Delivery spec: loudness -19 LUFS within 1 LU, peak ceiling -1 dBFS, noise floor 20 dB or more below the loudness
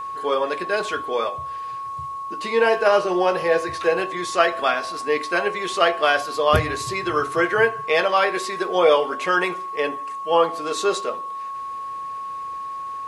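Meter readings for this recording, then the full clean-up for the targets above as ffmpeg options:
steady tone 1100 Hz; tone level -28 dBFS; loudness -22.0 LUFS; peak -1.5 dBFS; loudness target -19.0 LUFS
-> -af "bandreject=f=1.1k:w=30"
-af "volume=3dB,alimiter=limit=-1dB:level=0:latency=1"

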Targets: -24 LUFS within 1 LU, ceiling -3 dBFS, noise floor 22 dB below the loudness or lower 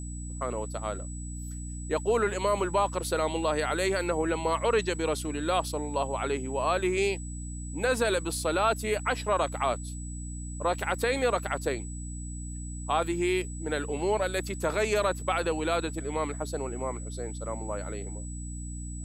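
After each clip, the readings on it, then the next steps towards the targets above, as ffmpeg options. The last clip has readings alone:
hum 60 Hz; harmonics up to 300 Hz; hum level -35 dBFS; steady tone 7900 Hz; tone level -44 dBFS; loudness -30.0 LUFS; peak -13.5 dBFS; loudness target -24.0 LUFS
-> -af "bandreject=f=60:t=h:w=6,bandreject=f=120:t=h:w=6,bandreject=f=180:t=h:w=6,bandreject=f=240:t=h:w=6,bandreject=f=300:t=h:w=6"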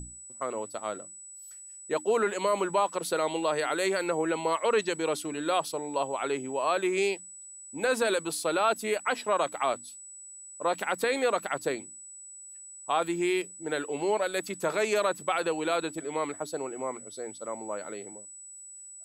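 hum none; steady tone 7900 Hz; tone level -44 dBFS
-> -af "bandreject=f=7.9k:w=30"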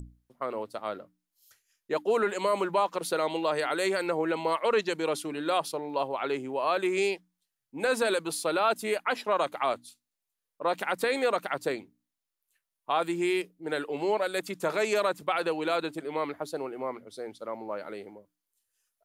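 steady tone none; loudness -29.5 LUFS; peak -14.5 dBFS; loudness target -24.0 LUFS
-> -af "volume=5.5dB"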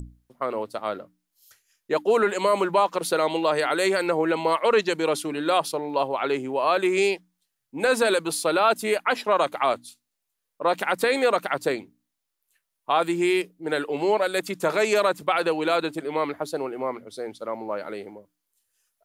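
loudness -24.0 LUFS; peak -9.0 dBFS; noise floor -81 dBFS

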